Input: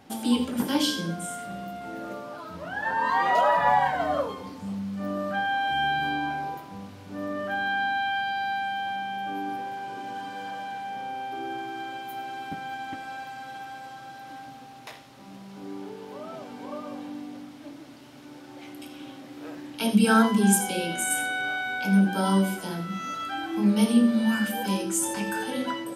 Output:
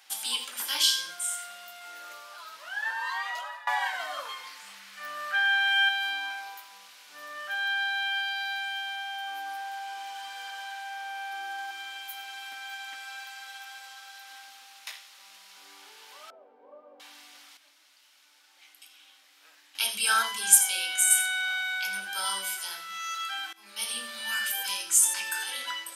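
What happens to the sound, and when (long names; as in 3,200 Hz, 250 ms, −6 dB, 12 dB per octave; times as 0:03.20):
0:02.75–0:03.67: fade out, to −22 dB
0:04.25–0:05.89: parametric band 1,800 Hz +7.5 dB 1.3 octaves
0:08.85–0:11.71: delay with a band-pass on its return 94 ms, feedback 83%, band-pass 1,100 Hz, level −11 dB
0:16.30–0:17.00: low-pass with resonance 490 Hz, resonance Q 3.1
0:17.57–0:19.75: clip gain −9.5 dB
0:23.53–0:24.02: fade in, from −22.5 dB
whole clip: high-pass filter 1,100 Hz 12 dB per octave; tilt shelving filter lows −7.5 dB, about 1,400 Hz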